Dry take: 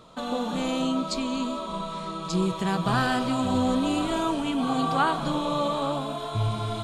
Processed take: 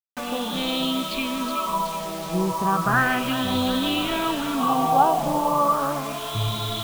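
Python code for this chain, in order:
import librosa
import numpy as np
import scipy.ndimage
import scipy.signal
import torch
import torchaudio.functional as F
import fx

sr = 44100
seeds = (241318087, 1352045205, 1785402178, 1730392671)

y = fx.filter_lfo_lowpass(x, sr, shape='sine', hz=0.34, low_hz=750.0, high_hz=3700.0, q=3.9)
y = fx.quant_dither(y, sr, seeds[0], bits=6, dither='none')
y = fx.echo_wet_highpass(y, sr, ms=372, feedback_pct=59, hz=2700.0, wet_db=-6.0)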